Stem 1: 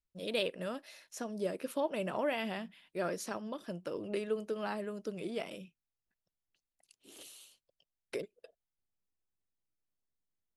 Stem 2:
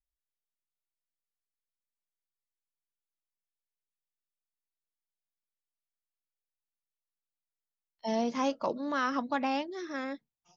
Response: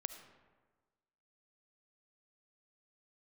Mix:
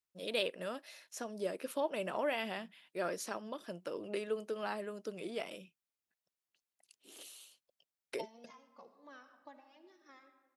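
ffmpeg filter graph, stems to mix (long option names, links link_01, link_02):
-filter_complex "[0:a]volume=0dB,asplit=2[link_01][link_02];[1:a]acompressor=threshold=-38dB:ratio=8,tremolo=f=3:d=0.81,asplit=2[link_03][link_04];[link_04]adelay=2.4,afreqshift=-2.4[link_05];[link_03][link_05]amix=inputs=2:normalize=1,adelay=150,volume=-2dB,asplit=2[link_06][link_07];[link_07]volume=-4.5dB[link_08];[link_02]apad=whole_len=472747[link_09];[link_06][link_09]sidechaingate=range=-33dB:threshold=-55dB:ratio=16:detection=peak[link_10];[2:a]atrim=start_sample=2205[link_11];[link_08][link_11]afir=irnorm=-1:irlink=0[link_12];[link_01][link_10][link_12]amix=inputs=3:normalize=0,highpass=frequency=340:poles=1"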